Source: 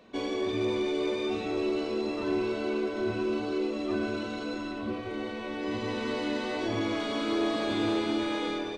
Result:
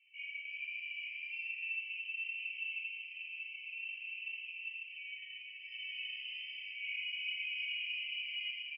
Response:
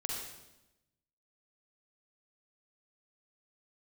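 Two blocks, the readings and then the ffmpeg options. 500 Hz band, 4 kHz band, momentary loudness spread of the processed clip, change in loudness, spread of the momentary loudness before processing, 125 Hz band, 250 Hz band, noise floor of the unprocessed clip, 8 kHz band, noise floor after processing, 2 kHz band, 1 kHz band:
below −40 dB, −2.5 dB, 7 LU, −9.0 dB, 6 LU, below −40 dB, below −40 dB, −36 dBFS, below −30 dB, −50 dBFS, 0.0 dB, below −40 dB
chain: -filter_complex "[0:a]asuperpass=centerf=3000:order=12:qfactor=1.7,aecho=1:1:5.2:0.82,flanger=delay=15:depth=3.5:speed=1.2,asplit=7[link_01][link_02][link_03][link_04][link_05][link_06][link_07];[link_02]adelay=133,afreqshift=120,volume=-14.5dB[link_08];[link_03]adelay=266,afreqshift=240,volume=-19.4dB[link_09];[link_04]adelay=399,afreqshift=360,volume=-24.3dB[link_10];[link_05]adelay=532,afreqshift=480,volume=-29.1dB[link_11];[link_06]adelay=665,afreqshift=600,volume=-34dB[link_12];[link_07]adelay=798,afreqshift=720,volume=-38.9dB[link_13];[link_01][link_08][link_09][link_10][link_11][link_12][link_13]amix=inputs=7:normalize=0[link_14];[1:a]atrim=start_sample=2205,asetrate=52920,aresample=44100[link_15];[link_14][link_15]afir=irnorm=-1:irlink=0,afftfilt=real='re*eq(mod(floor(b*sr/1024/1600),2),1)':imag='im*eq(mod(floor(b*sr/1024/1600),2),1)':win_size=1024:overlap=0.75,volume=5dB"

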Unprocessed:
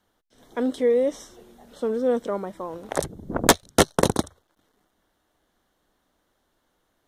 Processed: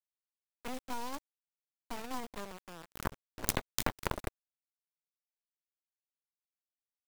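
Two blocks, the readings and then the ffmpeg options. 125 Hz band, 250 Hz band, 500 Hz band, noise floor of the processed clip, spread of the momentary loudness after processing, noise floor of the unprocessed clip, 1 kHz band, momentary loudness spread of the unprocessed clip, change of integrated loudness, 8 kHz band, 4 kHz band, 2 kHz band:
−12.5 dB, −18.0 dB, −22.5 dB, below −85 dBFS, 13 LU, −72 dBFS, −12.5 dB, 15 LU, −16.0 dB, −13.5 dB, −14.0 dB, −12.5 dB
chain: -filter_complex "[0:a]acrossover=split=2900[link_01][link_02];[link_01]adelay=80[link_03];[link_03][link_02]amix=inputs=2:normalize=0,acrusher=bits=4:mix=0:aa=0.000001,acompressor=threshold=-20dB:ratio=6,aeval=exprs='0.631*(cos(1*acos(clip(val(0)/0.631,-1,1)))-cos(1*PI/2))+0.224*(cos(3*acos(clip(val(0)/0.631,-1,1)))-cos(3*PI/2))+0.0708*(cos(4*acos(clip(val(0)/0.631,-1,1)))-cos(4*PI/2))':channel_layout=same,volume=2.5dB"

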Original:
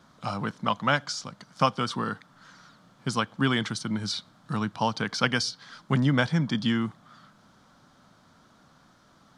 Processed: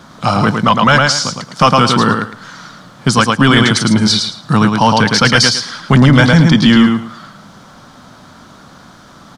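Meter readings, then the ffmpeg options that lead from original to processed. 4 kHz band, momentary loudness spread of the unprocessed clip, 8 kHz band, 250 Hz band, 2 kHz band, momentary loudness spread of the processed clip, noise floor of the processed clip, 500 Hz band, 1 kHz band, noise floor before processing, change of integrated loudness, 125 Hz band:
+18.0 dB, 10 LU, +19.0 dB, +17.5 dB, +16.5 dB, 9 LU, −40 dBFS, +16.0 dB, +16.5 dB, −59 dBFS, +17.0 dB, +17.0 dB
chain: -af "aecho=1:1:109|218|327:0.531|0.111|0.0234,apsyclip=20dB,volume=-2dB"

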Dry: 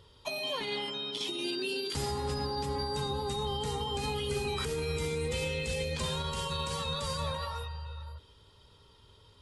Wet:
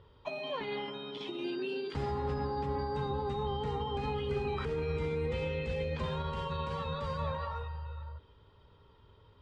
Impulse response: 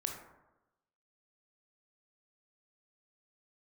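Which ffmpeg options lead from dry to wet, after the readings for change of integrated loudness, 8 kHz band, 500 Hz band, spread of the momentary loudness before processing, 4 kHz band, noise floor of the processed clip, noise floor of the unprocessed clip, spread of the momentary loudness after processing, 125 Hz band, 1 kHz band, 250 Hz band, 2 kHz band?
−2.0 dB, below −20 dB, 0.0 dB, 5 LU, −10.5 dB, −61 dBFS, −60 dBFS, 6 LU, 0.0 dB, 0.0 dB, 0.0 dB, −4.5 dB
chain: -af "lowpass=2000"

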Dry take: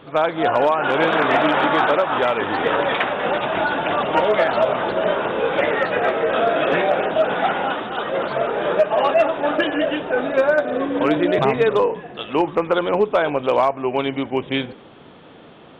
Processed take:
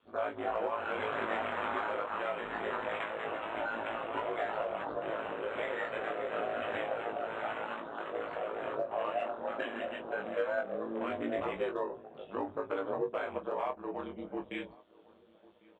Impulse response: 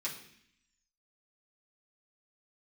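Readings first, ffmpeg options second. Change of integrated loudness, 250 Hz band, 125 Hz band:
−17.0 dB, −18.5 dB, −21.0 dB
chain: -filter_complex "[0:a]afwtdn=0.0447,bass=frequency=250:gain=-12,treble=frequency=4000:gain=8,bandreject=frequency=810:width=12,acrossover=split=180[link_01][link_02];[link_02]acompressor=threshold=-37dB:ratio=1.5[link_03];[link_01][link_03]amix=inputs=2:normalize=0,flanger=delay=17.5:depth=4.5:speed=0.26,aeval=exprs='val(0)*sin(2*PI*55*n/s)':channel_layout=same,asplit=2[link_04][link_05];[link_05]adelay=21,volume=-6.5dB[link_06];[link_04][link_06]amix=inputs=2:normalize=0,asplit=2[link_07][link_08];[link_08]adelay=1099,lowpass=frequency=1200:poles=1,volume=-22.5dB,asplit=2[link_09][link_10];[link_10]adelay=1099,lowpass=frequency=1200:poles=1,volume=0.41,asplit=2[link_11][link_12];[link_12]adelay=1099,lowpass=frequency=1200:poles=1,volume=0.41[link_13];[link_07][link_09][link_11][link_13]amix=inputs=4:normalize=0,volume=-3.5dB"

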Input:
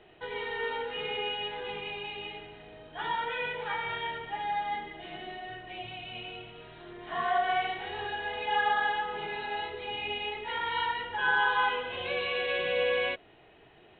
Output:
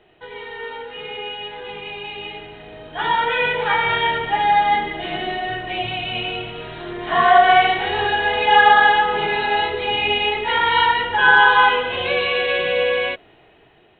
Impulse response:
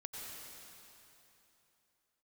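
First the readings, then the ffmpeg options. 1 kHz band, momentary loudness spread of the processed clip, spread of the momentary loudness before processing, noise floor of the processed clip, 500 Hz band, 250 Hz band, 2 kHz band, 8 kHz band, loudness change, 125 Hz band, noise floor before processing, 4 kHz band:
+15.0 dB, 19 LU, 14 LU, −52 dBFS, +12.0 dB, +14.5 dB, +14.0 dB, can't be measured, +15.0 dB, +14.5 dB, −57 dBFS, +13.0 dB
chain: -af "dynaudnorm=framelen=860:gausssize=7:maxgain=16dB,volume=1.5dB"

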